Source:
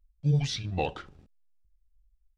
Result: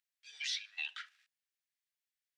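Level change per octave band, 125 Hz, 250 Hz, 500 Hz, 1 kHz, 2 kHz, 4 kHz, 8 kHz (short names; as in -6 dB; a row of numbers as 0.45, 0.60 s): under -40 dB, under -40 dB, under -40 dB, -21.5 dB, +1.0 dB, -2.0 dB, n/a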